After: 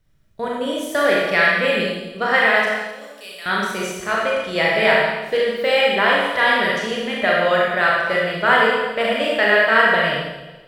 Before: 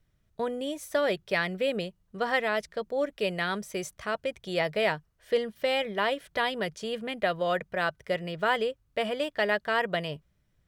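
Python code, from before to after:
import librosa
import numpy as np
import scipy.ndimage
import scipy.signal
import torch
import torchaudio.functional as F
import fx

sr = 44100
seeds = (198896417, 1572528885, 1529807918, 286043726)

y = fx.pre_emphasis(x, sr, coefficient=0.97, at=(2.63, 3.46))
y = fx.rev_schroeder(y, sr, rt60_s=1.3, comb_ms=28, drr_db=-4.5)
y = fx.dynamic_eq(y, sr, hz=1700.0, q=0.87, threshold_db=-38.0, ratio=4.0, max_db=7)
y = y * librosa.db_to_amplitude(3.0)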